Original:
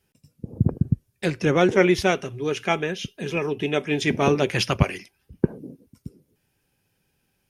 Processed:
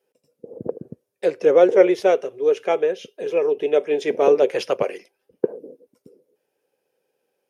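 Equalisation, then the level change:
high-pass with resonance 490 Hz, resonance Q 4.4
tilt shelving filter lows +4.5 dB, about 790 Hz
−3.5 dB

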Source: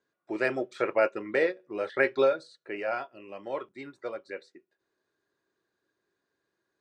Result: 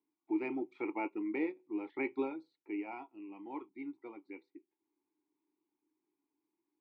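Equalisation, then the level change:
formant filter u
high-shelf EQ 3,500 Hz −9.5 dB
+6.0 dB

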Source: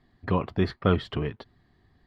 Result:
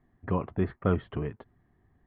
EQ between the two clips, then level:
Bessel low-pass filter 1,800 Hz, order 8
high-frequency loss of the air 92 metres
−3.0 dB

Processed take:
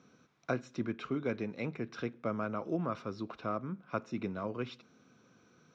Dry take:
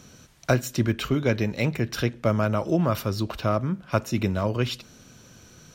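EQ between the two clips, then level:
loudspeaker in its box 210–5,000 Hz, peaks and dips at 360 Hz −3 dB, 600 Hz −8 dB, 880 Hz −6 dB, 1,800 Hz −8 dB, 3,000 Hz −9 dB, 4,500 Hz −8 dB
low-shelf EQ 470 Hz −5 dB
high-shelf EQ 2,400 Hz −10.5 dB
−3.5 dB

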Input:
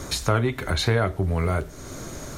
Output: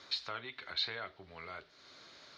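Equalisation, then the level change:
resonant band-pass 4,400 Hz, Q 3
high-frequency loss of the air 340 metres
+6.0 dB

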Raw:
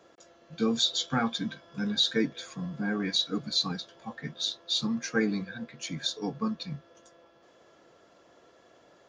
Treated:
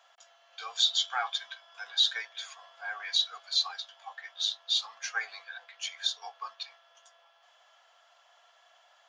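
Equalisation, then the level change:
elliptic high-pass filter 710 Hz, stop band 60 dB
parametric band 3,100 Hz +8 dB 0.3 octaves
0.0 dB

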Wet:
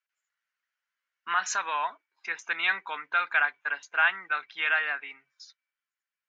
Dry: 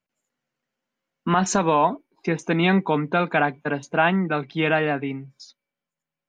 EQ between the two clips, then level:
high-pass with resonance 1,500 Hz, resonance Q 2.1
Butterworth low-pass 7,300 Hz
−5.0 dB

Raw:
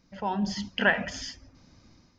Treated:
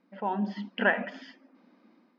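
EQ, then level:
linear-phase brick-wall high-pass 190 Hz
high-frequency loss of the air 460 metres
+1.5 dB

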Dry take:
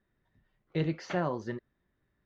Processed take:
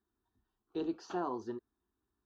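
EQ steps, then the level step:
high-pass filter 49 Hz
dynamic equaliser 560 Hz, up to +5 dB, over −42 dBFS, Q 1
phaser with its sweep stopped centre 560 Hz, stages 6
−3.5 dB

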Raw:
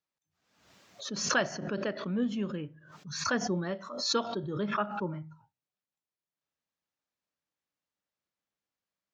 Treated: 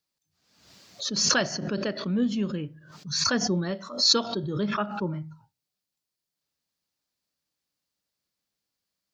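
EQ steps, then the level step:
low-shelf EQ 470 Hz +8.5 dB
high-shelf EQ 2,600 Hz +10 dB
parametric band 4,600 Hz +7 dB 0.44 octaves
−1.5 dB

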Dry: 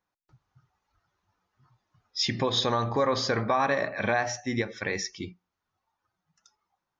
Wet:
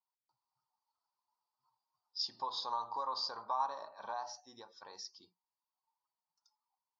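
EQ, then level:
notch filter 1,700 Hz, Q 18
dynamic equaliser 1,400 Hz, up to +5 dB, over −39 dBFS, Q 0.99
pair of resonant band-passes 2,100 Hz, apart 2.3 octaves
−4.0 dB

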